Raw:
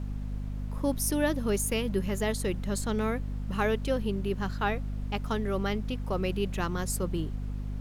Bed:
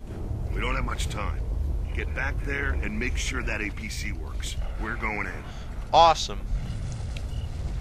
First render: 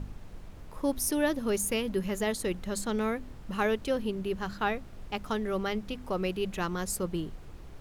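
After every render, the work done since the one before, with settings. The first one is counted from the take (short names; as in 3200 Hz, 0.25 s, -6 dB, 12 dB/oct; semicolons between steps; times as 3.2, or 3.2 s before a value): de-hum 50 Hz, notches 5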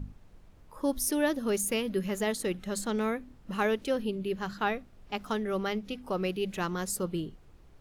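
noise print and reduce 10 dB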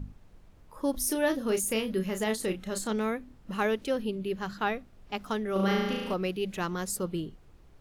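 0.91–2.93 doubler 32 ms -8 dB; 5.52–6.14 flutter echo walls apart 6.2 m, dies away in 1.3 s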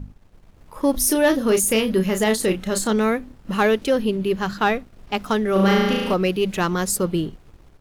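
sample leveller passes 1; AGC gain up to 7 dB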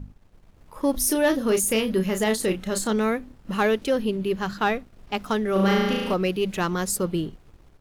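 gain -3.5 dB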